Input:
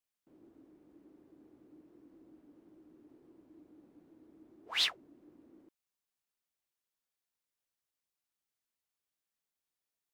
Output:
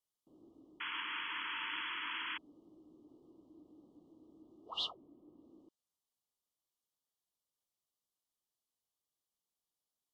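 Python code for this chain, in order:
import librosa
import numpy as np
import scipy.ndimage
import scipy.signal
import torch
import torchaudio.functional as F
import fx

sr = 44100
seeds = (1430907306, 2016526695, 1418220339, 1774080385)

y = fx.env_lowpass_down(x, sr, base_hz=2700.0, full_db=-49.5)
y = fx.brickwall_bandstop(y, sr, low_hz=1300.0, high_hz=2800.0)
y = fx.spec_paint(y, sr, seeds[0], shape='noise', start_s=0.8, length_s=1.58, low_hz=880.0, high_hz=3400.0, level_db=-40.0)
y = y * 10.0 ** (-1.0 / 20.0)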